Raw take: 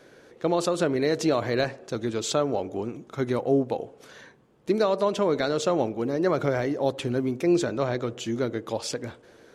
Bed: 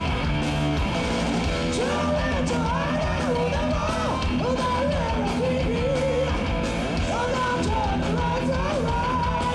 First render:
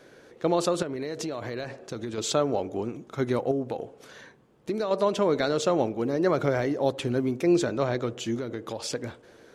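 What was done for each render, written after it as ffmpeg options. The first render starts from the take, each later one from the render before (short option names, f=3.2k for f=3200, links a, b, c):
-filter_complex "[0:a]asettb=1/sr,asplit=3[a][b][c];[a]atrim=end=0.824[d];[b]atrim=start=0.82:end=2.18,asetpts=PTS-STARTPTS,afade=t=in:d=0.004:c=qsin,afade=t=out:st=1.356:d=0.004:c=qsin,acompressor=threshold=-29dB:ratio=6:attack=3.2:release=140:knee=1:detection=peak[e];[c]atrim=start=2.176[f];[d][e]acrossfade=d=0.004:c1=hsin:c2=qsin[g];[g][f]acrossfade=d=0.004:c1=qsin:c2=hsin,asettb=1/sr,asplit=3[h][i][j];[h]atrim=end=3.514[k];[i]atrim=start=3.51:end=4.91,asetpts=PTS-STARTPTS,afade=t=in:d=0.004:c=qsin,afade=t=out:st=1.396:d=0.004:c=qsin,acompressor=threshold=-27dB:ratio=2.5:attack=3.2:release=140:knee=1:detection=peak[l];[j]atrim=start=4.906[m];[k][l]acrossfade=d=0.004:c1=hsin:c2=qsin[n];[n][m]acrossfade=d=0.004:c1=qsin:c2=hsin,asettb=1/sr,asplit=3[o][p][q];[o]atrim=end=8.354[r];[p]atrim=start=8.35:end=8.91,asetpts=PTS-STARTPTS,afade=t=in:d=0.004:c=qsin,afade=t=out:st=0.556:d=0.004:c=qsin,acompressor=threshold=-28dB:ratio=5:attack=3.2:release=140:knee=1:detection=peak[s];[q]atrim=start=8.906[t];[r][s]acrossfade=d=0.004:c1=hsin:c2=qsin[u];[u][t]acrossfade=d=0.004:c1=qsin:c2=hsin"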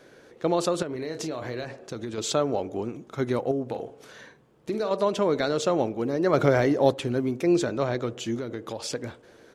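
-filter_complex "[0:a]asettb=1/sr,asplit=3[a][b][c];[a]atrim=end=0.874[d];[b]atrim=start=0.87:end=1.65,asetpts=PTS-STARTPTS,afade=t=in:d=0.004:c=qsin,afade=t=out:st=0.776:d=0.004:c=qsin,asplit=2[e][f];[f]adelay=32,volume=-8.5dB[g];[e][g]amix=inputs=2:normalize=0,atrim=end_sample=34398[h];[c]atrim=start=1.646[i];[d][h]acrossfade=d=0.004:c1=hsin:c2=qsin[j];[j][i]acrossfade=d=0.004:c1=qsin:c2=hsin,asplit=3[k][l][m];[k]afade=t=out:st=3.7:d=0.02[n];[l]asplit=2[o][p];[p]adelay=48,volume=-8.5dB[q];[o][q]amix=inputs=2:normalize=0,afade=t=in:st=3.7:d=0.02,afade=t=out:st=4.95:d=0.02[r];[m]afade=t=in:st=4.95:d=0.02[s];[n][r][s]amix=inputs=3:normalize=0,asettb=1/sr,asplit=3[t][u][v];[t]atrim=end=6.334[w];[u]atrim=start=6.33:end=6.94,asetpts=PTS-STARTPTS,afade=t=in:d=0.004:c=qsin,afade=t=out:st=0.606:d=0.004:c=qsin,acontrast=22[x];[v]atrim=start=6.936[y];[w][x]acrossfade=d=0.004:c1=hsin:c2=qsin[z];[z][y]acrossfade=d=0.004:c1=qsin:c2=hsin"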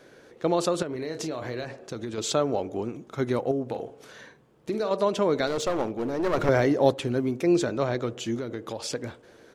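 -filter_complex "[0:a]asettb=1/sr,asplit=3[a][b][c];[a]atrim=end=5.474[d];[b]atrim=start=5.47:end=6.49,asetpts=PTS-STARTPTS,afade=t=in:d=0.004:c=qsin,afade=t=out:st=1.016:d=0.004:c=qsin,aeval=exprs='clip(val(0),-1,0.0473)':c=same[e];[c]atrim=start=6.486[f];[d][e]acrossfade=d=0.004:c1=hsin:c2=qsin[g];[g][f]acrossfade=d=0.004:c1=qsin:c2=hsin"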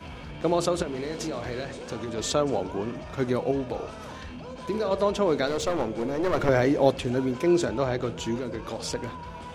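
-filter_complex "[1:a]volume=-16dB[a];[0:a][a]amix=inputs=2:normalize=0"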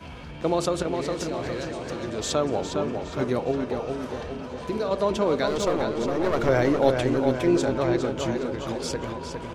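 -filter_complex "[0:a]asplit=2[a][b];[b]adelay=409,lowpass=f=4.6k:p=1,volume=-5dB,asplit=2[c][d];[d]adelay=409,lowpass=f=4.6k:p=1,volume=0.55,asplit=2[e][f];[f]adelay=409,lowpass=f=4.6k:p=1,volume=0.55,asplit=2[g][h];[h]adelay=409,lowpass=f=4.6k:p=1,volume=0.55,asplit=2[i][j];[j]adelay=409,lowpass=f=4.6k:p=1,volume=0.55,asplit=2[k][l];[l]adelay=409,lowpass=f=4.6k:p=1,volume=0.55,asplit=2[m][n];[n]adelay=409,lowpass=f=4.6k:p=1,volume=0.55[o];[a][c][e][g][i][k][m][o]amix=inputs=8:normalize=0"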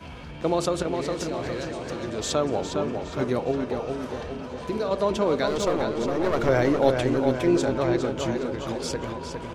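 -af anull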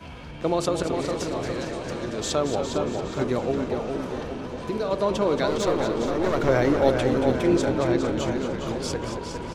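-filter_complex "[0:a]asplit=9[a][b][c][d][e][f][g][h][i];[b]adelay=227,afreqshift=-40,volume=-9.5dB[j];[c]adelay=454,afreqshift=-80,volume=-13.5dB[k];[d]adelay=681,afreqshift=-120,volume=-17.5dB[l];[e]adelay=908,afreqshift=-160,volume=-21.5dB[m];[f]adelay=1135,afreqshift=-200,volume=-25.6dB[n];[g]adelay=1362,afreqshift=-240,volume=-29.6dB[o];[h]adelay=1589,afreqshift=-280,volume=-33.6dB[p];[i]adelay=1816,afreqshift=-320,volume=-37.6dB[q];[a][j][k][l][m][n][o][p][q]amix=inputs=9:normalize=0"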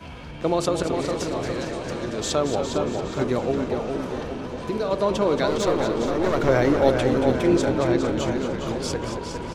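-af "volume=1.5dB"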